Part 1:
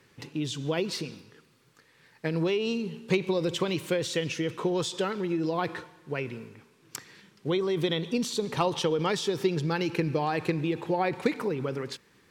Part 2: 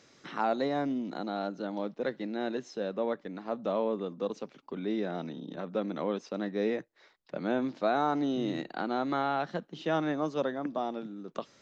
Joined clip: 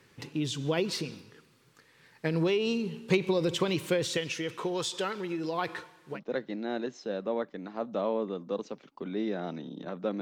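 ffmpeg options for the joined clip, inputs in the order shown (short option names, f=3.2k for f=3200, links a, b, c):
-filter_complex "[0:a]asettb=1/sr,asplit=3[a][b][c];[a]atrim=end=4.174[d];[b]atrim=start=4.17:end=6.2,asetpts=PTS-STARTPTS,afade=t=in:d=0.004:c=qsin,afade=t=out:st=2.026:d=0.004:c=qsin,lowshelf=f=420:g=-8.5[e];[c]atrim=start=6.196[f];[d][e]acrossfade=d=0.004:c1=hsin:c2=qsin[g];[g][f]acrossfade=d=0.004:c1=qsin:c2=hsin,apad=whole_dur=10.21,atrim=end=10.21,atrim=end=6.2,asetpts=PTS-STARTPTS[h];[1:a]atrim=start=1.83:end=5.92,asetpts=PTS-STARTPTS[i];[h][i]acrossfade=d=0.08:c1=tri:c2=tri"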